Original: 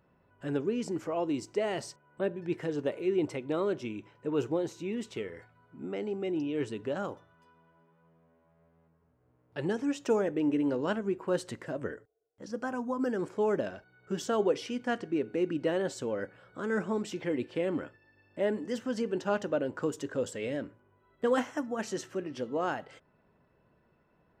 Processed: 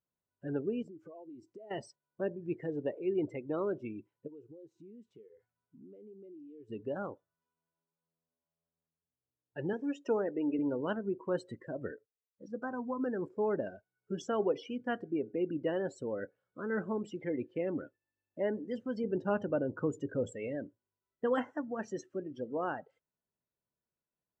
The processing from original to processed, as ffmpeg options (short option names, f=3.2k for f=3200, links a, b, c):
-filter_complex "[0:a]asettb=1/sr,asplit=3[a][b][c];[a]atrim=end=0.824[d];[b]atrim=start=0.82:end=1.71,asetpts=PTS-STARTPTS,afade=t=in:d=0.004:c=qsin,afade=t=out:st=0.886:d=0.004:c=qsin,acompressor=threshold=-41dB:ratio=20:attack=3.2:release=140:knee=1:detection=peak[e];[c]atrim=start=1.706[f];[d][e]acrossfade=d=0.004:c1=hsin:c2=qsin[g];[g][f]acrossfade=d=0.004:c1=qsin:c2=hsin,asplit=3[h][i][j];[h]afade=t=out:st=4.26:d=0.02[k];[i]acompressor=threshold=-46dB:ratio=5:attack=3.2:release=140:knee=1:detection=peak,afade=t=in:st=4.26:d=0.02,afade=t=out:st=6.68:d=0.02[l];[j]afade=t=in:st=6.68:d=0.02[m];[k][l][m]amix=inputs=3:normalize=0,asettb=1/sr,asplit=3[n][o][p];[n]atrim=end=9.734[q];[o]atrim=start=9.73:end=10.59,asetpts=PTS-STARTPTS,afade=t=in:d=0.004:c=qsin,afade=t=out:st=0.856:d=0.004:c=qsin,highpass=200[r];[p]atrim=start=10.586[s];[q][r]acrossfade=d=0.004:c1=hsin:c2=qsin[t];[t][s]acrossfade=d=0.004:c1=qsin:c2=hsin,asettb=1/sr,asplit=3[u][v][w];[u]atrim=end=19.044[x];[v]atrim=start=19.04:end=20.34,asetpts=PTS-STARTPTS,afade=t=in:d=0.004:c=qsin,afade=t=out:st=1.296:d=0.004:c=qsin,lowshelf=f=220:g=8.5[y];[w]atrim=start=20.336[z];[x][y]acrossfade=d=0.004:c1=hsin:c2=qsin[aa];[aa][z]acrossfade=d=0.004:c1=qsin:c2=hsin,afftdn=nr=25:nf=-39,volume=-3.5dB"